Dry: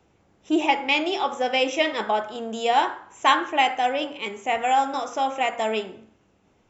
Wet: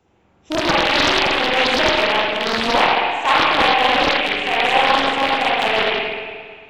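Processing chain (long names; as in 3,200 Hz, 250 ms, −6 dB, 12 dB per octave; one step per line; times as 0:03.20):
loose part that buzzes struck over −41 dBFS, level −8 dBFS
spring reverb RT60 1.9 s, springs 44/57 ms, chirp 20 ms, DRR −6.5 dB
highs frequency-modulated by the lows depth 0.88 ms
level −1.5 dB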